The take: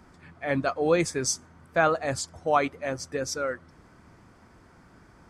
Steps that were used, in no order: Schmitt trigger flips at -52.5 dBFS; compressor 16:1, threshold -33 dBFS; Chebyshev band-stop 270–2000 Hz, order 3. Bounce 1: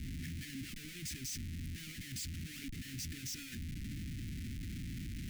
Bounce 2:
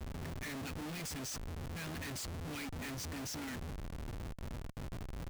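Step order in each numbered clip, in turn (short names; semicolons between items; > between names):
compressor > Schmitt trigger > Chebyshev band-stop; Chebyshev band-stop > compressor > Schmitt trigger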